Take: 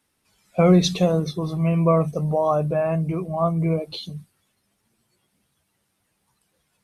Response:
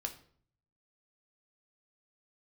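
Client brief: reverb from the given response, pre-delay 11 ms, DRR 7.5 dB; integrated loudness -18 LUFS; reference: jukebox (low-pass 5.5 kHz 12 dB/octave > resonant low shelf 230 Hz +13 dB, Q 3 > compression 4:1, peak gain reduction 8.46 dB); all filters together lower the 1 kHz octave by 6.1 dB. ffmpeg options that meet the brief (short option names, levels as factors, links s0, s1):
-filter_complex "[0:a]equalizer=f=1000:t=o:g=-7,asplit=2[s0][s1];[1:a]atrim=start_sample=2205,adelay=11[s2];[s1][s2]afir=irnorm=-1:irlink=0,volume=0.447[s3];[s0][s3]amix=inputs=2:normalize=0,lowpass=5500,lowshelf=f=230:t=q:w=3:g=13,acompressor=threshold=0.631:ratio=4,volume=0.355"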